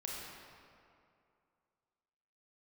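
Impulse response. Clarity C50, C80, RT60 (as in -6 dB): -1.5 dB, 0.0 dB, 2.5 s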